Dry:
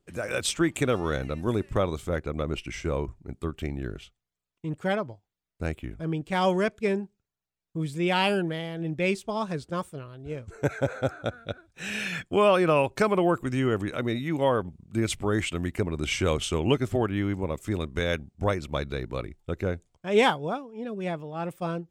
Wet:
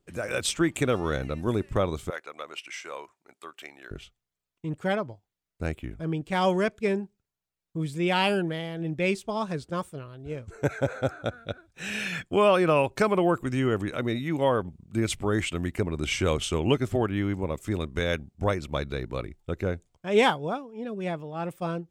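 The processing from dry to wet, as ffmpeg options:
-filter_complex "[0:a]asettb=1/sr,asplit=3[s0][s1][s2];[s0]atrim=end=2.104[s3];[s1]atrim=start=2.1:end=3.91,asetpts=PTS-STARTPTS,afade=t=in:d=0.004:c=qsin,afade=t=out:st=1.806:d=0.004:c=qsin,highpass=880[s4];[s2]atrim=start=3.906[s5];[s3][s4]acrossfade=d=0.004:c1=hsin:c2=qsin[s6];[s6][s5]acrossfade=d=0.004:c1=qsin:c2=hsin"

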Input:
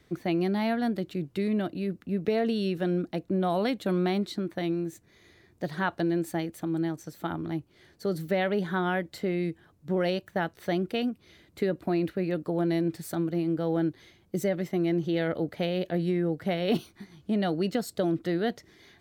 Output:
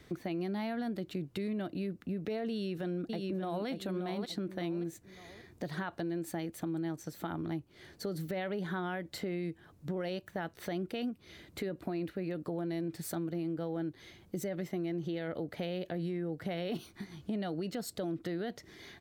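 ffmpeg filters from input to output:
-filter_complex "[0:a]asplit=2[s0][s1];[s1]afade=t=in:st=2.51:d=0.01,afade=t=out:st=3.67:d=0.01,aecho=0:1:580|1160|1740:0.530884|0.106177|0.0212354[s2];[s0][s2]amix=inputs=2:normalize=0,alimiter=limit=0.0631:level=0:latency=1:release=76,acompressor=threshold=0.00631:ratio=2,volume=1.58"

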